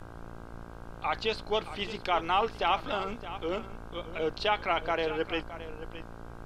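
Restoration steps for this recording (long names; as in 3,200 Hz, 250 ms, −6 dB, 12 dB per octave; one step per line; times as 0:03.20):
hum removal 57.3 Hz, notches 28
noise reduction from a noise print 30 dB
echo removal 619 ms −13.5 dB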